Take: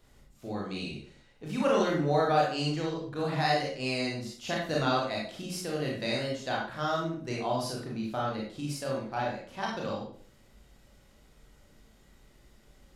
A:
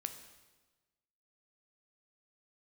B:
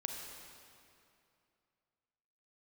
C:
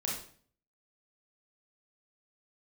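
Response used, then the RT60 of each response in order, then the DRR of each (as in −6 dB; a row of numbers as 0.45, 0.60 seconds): C; 1.2, 2.6, 0.50 seconds; 7.0, 1.5, −3.5 decibels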